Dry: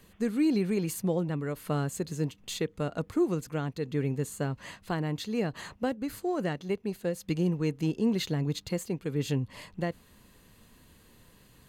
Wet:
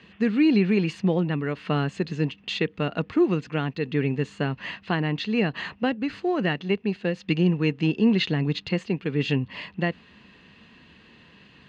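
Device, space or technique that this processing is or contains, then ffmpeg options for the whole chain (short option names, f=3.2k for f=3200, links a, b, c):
guitar cabinet: -af "highpass=91,equalizer=f=110:t=q:w=4:g=-7,equalizer=f=200:t=q:w=4:g=3,equalizer=f=550:t=q:w=4:g=-4,equalizer=f=1.8k:t=q:w=4:g=5,equalizer=f=2.7k:t=q:w=4:g=9,lowpass=f=4.5k:w=0.5412,lowpass=f=4.5k:w=1.3066,volume=6dB"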